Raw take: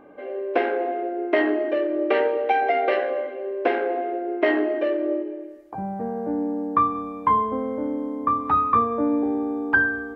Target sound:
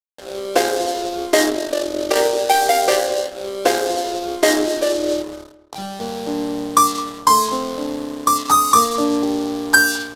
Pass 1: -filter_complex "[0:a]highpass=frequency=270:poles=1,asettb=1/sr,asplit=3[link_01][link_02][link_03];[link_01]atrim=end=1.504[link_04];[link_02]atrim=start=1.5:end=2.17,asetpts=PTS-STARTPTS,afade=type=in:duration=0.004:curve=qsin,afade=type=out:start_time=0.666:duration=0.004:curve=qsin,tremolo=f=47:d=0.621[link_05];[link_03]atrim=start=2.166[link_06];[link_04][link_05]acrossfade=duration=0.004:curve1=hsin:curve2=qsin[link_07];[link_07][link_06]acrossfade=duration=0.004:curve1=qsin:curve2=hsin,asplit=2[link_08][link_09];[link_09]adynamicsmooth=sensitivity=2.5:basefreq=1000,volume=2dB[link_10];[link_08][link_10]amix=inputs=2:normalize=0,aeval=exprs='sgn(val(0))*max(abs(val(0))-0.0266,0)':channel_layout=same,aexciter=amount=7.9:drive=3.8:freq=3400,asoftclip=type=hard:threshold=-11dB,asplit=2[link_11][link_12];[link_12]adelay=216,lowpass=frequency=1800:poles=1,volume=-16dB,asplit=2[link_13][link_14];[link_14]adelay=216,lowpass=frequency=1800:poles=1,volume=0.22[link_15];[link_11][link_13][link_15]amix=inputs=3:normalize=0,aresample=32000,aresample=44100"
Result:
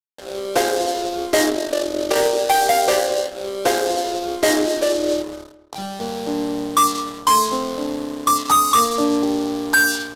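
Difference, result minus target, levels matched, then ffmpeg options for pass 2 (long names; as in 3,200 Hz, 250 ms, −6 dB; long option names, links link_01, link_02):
hard clipping: distortion +20 dB
-filter_complex "[0:a]highpass=frequency=270:poles=1,asettb=1/sr,asplit=3[link_01][link_02][link_03];[link_01]atrim=end=1.504[link_04];[link_02]atrim=start=1.5:end=2.17,asetpts=PTS-STARTPTS,afade=type=in:duration=0.004:curve=qsin,afade=type=out:start_time=0.666:duration=0.004:curve=qsin,tremolo=f=47:d=0.621[link_05];[link_03]atrim=start=2.166[link_06];[link_04][link_05]acrossfade=duration=0.004:curve1=hsin:curve2=qsin[link_07];[link_07][link_06]acrossfade=duration=0.004:curve1=qsin:curve2=hsin,asplit=2[link_08][link_09];[link_09]adynamicsmooth=sensitivity=2.5:basefreq=1000,volume=2dB[link_10];[link_08][link_10]amix=inputs=2:normalize=0,aeval=exprs='sgn(val(0))*max(abs(val(0))-0.0266,0)':channel_layout=same,aexciter=amount=7.9:drive=3.8:freq=3400,asoftclip=type=hard:threshold=-3dB,asplit=2[link_11][link_12];[link_12]adelay=216,lowpass=frequency=1800:poles=1,volume=-16dB,asplit=2[link_13][link_14];[link_14]adelay=216,lowpass=frequency=1800:poles=1,volume=0.22[link_15];[link_11][link_13][link_15]amix=inputs=3:normalize=0,aresample=32000,aresample=44100"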